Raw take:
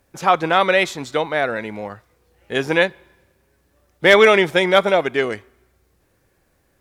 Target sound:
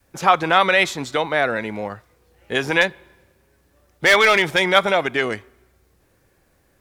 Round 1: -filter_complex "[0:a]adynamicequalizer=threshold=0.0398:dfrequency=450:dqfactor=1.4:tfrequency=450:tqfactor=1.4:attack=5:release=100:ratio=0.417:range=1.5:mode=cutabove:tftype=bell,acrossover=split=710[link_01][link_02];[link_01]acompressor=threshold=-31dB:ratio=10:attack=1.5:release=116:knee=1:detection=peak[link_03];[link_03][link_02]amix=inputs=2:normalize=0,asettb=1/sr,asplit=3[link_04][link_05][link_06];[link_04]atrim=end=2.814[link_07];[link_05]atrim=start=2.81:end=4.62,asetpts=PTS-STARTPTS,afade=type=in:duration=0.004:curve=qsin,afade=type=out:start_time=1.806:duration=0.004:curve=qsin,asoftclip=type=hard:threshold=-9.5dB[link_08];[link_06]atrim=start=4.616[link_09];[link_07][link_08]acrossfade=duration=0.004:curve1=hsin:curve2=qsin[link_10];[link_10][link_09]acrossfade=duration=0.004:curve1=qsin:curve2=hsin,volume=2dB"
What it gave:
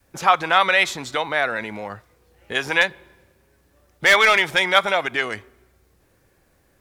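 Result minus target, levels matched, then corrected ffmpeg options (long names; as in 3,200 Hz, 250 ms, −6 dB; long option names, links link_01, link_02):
downward compressor: peak gain reduction +8.5 dB
-filter_complex "[0:a]adynamicequalizer=threshold=0.0398:dfrequency=450:dqfactor=1.4:tfrequency=450:tqfactor=1.4:attack=5:release=100:ratio=0.417:range=1.5:mode=cutabove:tftype=bell,acrossover=split=710[link_01][link_02];[link_01]acompressor=threshold=-21.5dB:ratio=10:attack=1.5:release=116:knee=1:detection=peak[link_03];[link_03][link_02]amix=inputs=2:normalize=0,asettb=1/sr,asplit=3[link_04][link_05][link_06];[link_04]atrim=end=2.814[link_07];[link_05]atrim=start=2.81:end=4.62,asetpts=PTS-STARTPTS,afade=type=in:duration=0.004:curve=qsin,afade=type=out:start_time=1.806:duration=0.004:curve=qsin,asoftclip=type=hard:threshold=-9.5dB[link_08];[link_06]atrim=start=4.616[link_09];[link_07][link_08]acrossfade=duration=0.004:curve1=hsin:curve2=qsin[link_10];[link_10][link_09]acrossfade=duration=0.004:curve1=qsin:curve2=hsin,volume=2dB"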